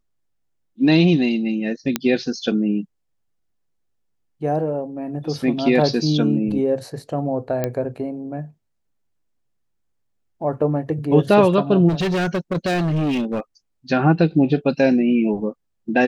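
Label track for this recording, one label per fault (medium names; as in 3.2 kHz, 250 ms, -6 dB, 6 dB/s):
1.960000	1.960000	pop -4 dBFS
7.640000	7.640000	pop -9 dBFS
11.880000	13.400000	clipped -18 dBFS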